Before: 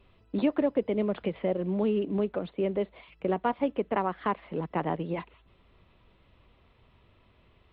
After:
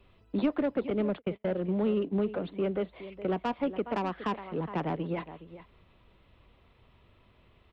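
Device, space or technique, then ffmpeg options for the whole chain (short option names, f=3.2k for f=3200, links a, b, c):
one-band saturation: -filter_complex "[0:a]aecho=1:1:415:0.168,asettb=1/sr,asplit=3[a][b][c];[a]atrim=end=0.904[d];[b]atrim=start=0.9:end=2.28,asetpts=PTS-STARTPTS,afade=t=in:d=0.004:c=qsin,afade=t=out:st=1.376:d=0.004:c=qsin,agate=range=-39dB:threshold=-31dB:ratio=16:detection=peak[e];[c]atrim=start=2.276[f];[d][e]acrossfade=d=0.004:c1=hsin:c2=qsin[g];[g][f]acrossfade=d=0.004:c1=qsin:c2=hsin,acrossover=split=270|3300[h][i][j];[i]asoftclip=type=tanh:threshold=-25.5dB[k];[h][k][j]amix=inputs=3:normalize=0"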